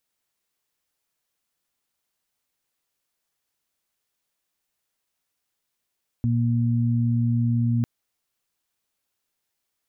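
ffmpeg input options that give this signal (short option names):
-f lavfi -i "aevalsrc='0.1*sin(2*PI*118*t)+0.0631*sin(2*PI*236*t)':d=1.6:s=44100"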